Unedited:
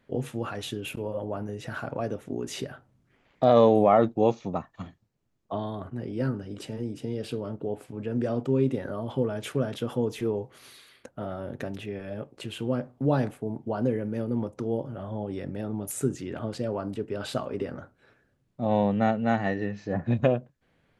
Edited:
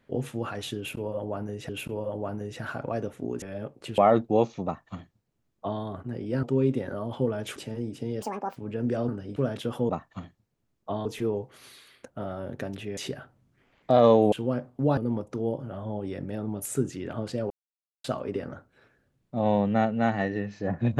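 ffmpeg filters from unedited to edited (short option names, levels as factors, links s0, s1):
-filter_complex "[0:a]asplit=17[s0][s1][s2][s3][s4][s5][s6][s7][s8][s9][s10][s11][s12][s13][s14][s15][s16];[s0]atrim=end=1.692[s17];[s1]atrim=start=0.768:end=2.502[s18];[s2]atrim=start=11.978:end=12.542[s19];[s3]atrim=start=3.848:end=6.302[s20];[s4]atrim=start=8.398:end=9.532[s21];[s5]atrim=start=6.578:end=7.244[s22];[s6]atrim=start=7.24:end=7.88,asetpts=PTS-STARTPTS,asetrate=82467,aresample=44100,atrim=end_sample=15093,asetpts=PTS-STARTPTS[s23];[s7]atrim=start=7.876:end=8.402[s24];[s8]atrim=start=6.298:end=6.582[s25];[s9]atrim=start=9.528:end=10.062[s26];[s10]atrim=start=4.518:end=5.682[s27];[s11]atrim=start=10.058:end=11.982[s28];[s12]atrim=start=2.498:end=3.852[s29];[s13]atrim=start=12.538:end=13.192[s30];[s14]atrim=start=14.228:end=16.76,asetpts=PTS-STARTPTS,afade=t=out:st=2.528:d=0.004:c=hsin[s31];[s15]atrim=start=16.76:end=17.3,asetpts=PTS-STARTPTS,volume=0[s32];[s16]atrim=start=17.3,asetpts=PTS-STARTPTS,afade=t=in:d=0.004:c=hsin[s33];[s17][s18]acrossfade=d=0.004:c1=hsin:c2=hsin[s34];[s34][s19]acrossfade=d=0.004:c1=hsin:c2=hsin[s35];[s35][s20]acrossfade=d=0.004:c1=hsin:c2=hsin[s36];[s36][s21]acrossfade=d=0.004:c1=hsin:c2=hsin[s37];[s37][s22]acrossfade=d=0.004:c1=hsin:c2=hsin[s38];[s38][s23]acrossfade=d=0.004:c1=hsin:c2=hsin[s39];[s39][s24]acrossfade=d=0.004:c1=hsin:c2=hsin[s40];[s40][s25]acrossfade=d=0.004:c1=hsin:c2=hsin[s41];[s41][s26]acrossfade=d=0.004:c1=hsin:c2=hsin[s42];[s42][s27]acrossfade=d=0.004:c1=hsin:c2=hsin[s43];[s43][s28]acrossfade=d=0.004:c1=hsin:c2=hsin[s44];[s44][s29]acrossfade=d=0.004:c1=hsin:c2=hsin[s45];[s45][s30]acrossfade=d=0.004:c1=hsin:c2=hsin[s46];[s31][s32][s33]concat=n=3:v=0:a=1[s47];[s46][s47]acrossfade=d=0.004:c1=hsin:c2=hsin"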